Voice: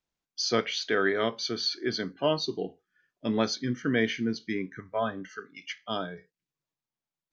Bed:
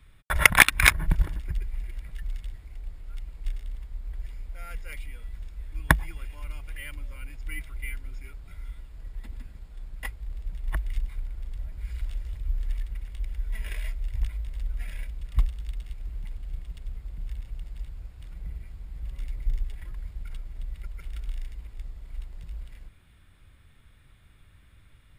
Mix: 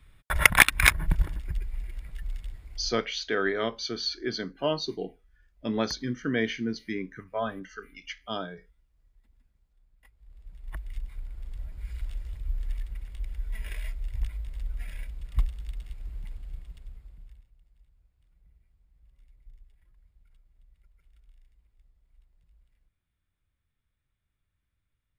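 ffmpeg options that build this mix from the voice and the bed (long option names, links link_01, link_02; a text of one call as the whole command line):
ffmpeg -i stem1.wav -i stem2.wav -filter_complex "[0:a]adelay=2400,volume=-1.5dB[link_01];[1:a]volume=21dB,afade=type=out:start_time=2.79:duration=0.31:silence=0.0668344,afade=type=in:start_time=10.1:duration=1.48:silence=0.0749894,afade=type=out:start_time=16.28:duration=1.22:silence=0.0794328[link_02];[link_01][link_02]amix=inputs=2:normalize=0" out.wav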